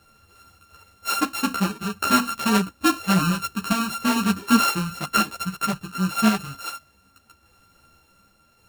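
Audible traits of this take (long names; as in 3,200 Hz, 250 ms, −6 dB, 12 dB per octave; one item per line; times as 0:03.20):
a buzz of ramps at a fixed pitch in blocks of 32 samples
sample-and-hold tremolo
a shimmering, thickened sound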